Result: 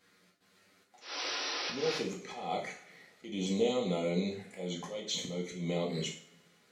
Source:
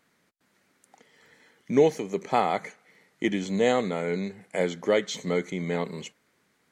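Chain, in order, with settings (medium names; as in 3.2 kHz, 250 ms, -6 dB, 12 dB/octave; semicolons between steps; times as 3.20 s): peaking EQ 4.1 kHz +5.5 dB 1.2 oct; band-stop 950 Hz, Q 12; compression 10:1, threshold -29 dBFS, peak gain reduction 15.5 dB; touch-sensitive flanger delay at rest 11.3 ms, full sweep at -31.5 dBFS; painted sound noise, 1.00–1.98 s, 270–5900 Hz -40 dBFS; slow attack 199 ms; two-slope reverb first 0.46 s, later 2.1 s, from -26 dB, DRR -2 dB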